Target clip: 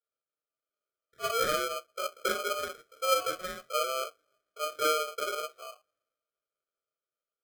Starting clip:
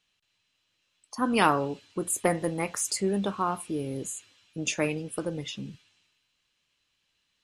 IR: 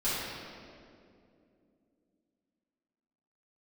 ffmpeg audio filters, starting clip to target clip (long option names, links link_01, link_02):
-filter_complex "[0:a]dynaudnorm=framelen=200:gausssize=11:maxgain=4dB,asplit=2[link_01][link_02];[link_02]acrusher=bits=4:mode=log:mix=0:aa=0.000001,volume=-9dB[link_03];[link_01][link_03]amix=inputs=2:normalize=0,asuperpass=centerf=380:order=4:qfactor=1.5[link_04];[1:a]atrim=start_sample=2205,atrim=end_sample=6174,asetrate=88200,aresample=44100[link_05];[link_04][link_05]afir=irnorm=-1:irlink=0,aeval=exprs='val(0)*sgn(sin(2*PI*920*n/s))':channel_layout=same,volume=-8dB"